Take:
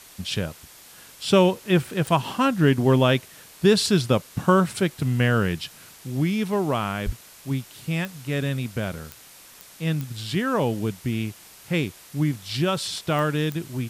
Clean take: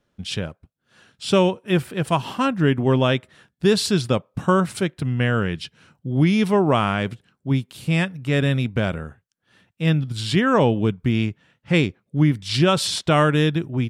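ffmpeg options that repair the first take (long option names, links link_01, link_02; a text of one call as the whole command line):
ffmpeg -i in.wav -filter_complex "[0:a]adeclick=threshold=4,asplit=3[link_01][link_02][link_03];[link_01]afade=type=out:start_time=7.05:duration=0.02[link_04];[link_02]highpass=frequency=140:width=0.5412,highpass=frequency=140:width=1.3066,afade=type=in:start_time=7.05:duration=0.02,afade=type=out:start_time=7.17:duration=0.02[link_05];[link_03]afade=type=in:start_time=7.17:duration=0.02[link_06];[link_04][link_05][link_06]amix=inputs=3:normalize=0,afwtdn=0.005,asetnsamples=nb_out_samples=441:pad=0,asendcmd='5.89 volume volume 6dB',volume=0dB" out.wav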